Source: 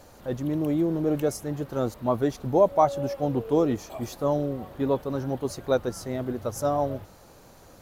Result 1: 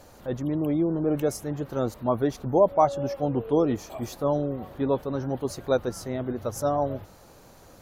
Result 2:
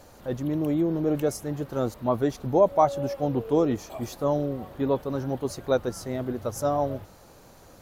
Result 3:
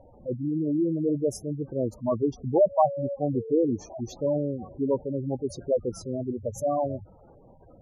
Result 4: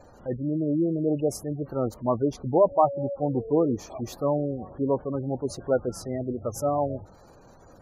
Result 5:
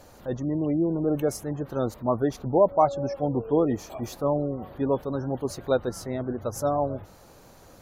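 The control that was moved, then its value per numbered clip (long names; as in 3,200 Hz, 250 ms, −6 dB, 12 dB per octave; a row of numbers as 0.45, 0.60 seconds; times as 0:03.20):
gate on every frequency bin, under each frame's peak: −45, −60, −10, −20, −35 decibels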